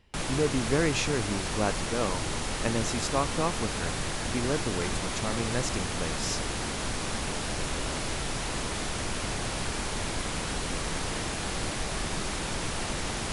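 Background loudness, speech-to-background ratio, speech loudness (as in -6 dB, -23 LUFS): -32.0 LUFS, 0.0 dB, -32.0 LUFS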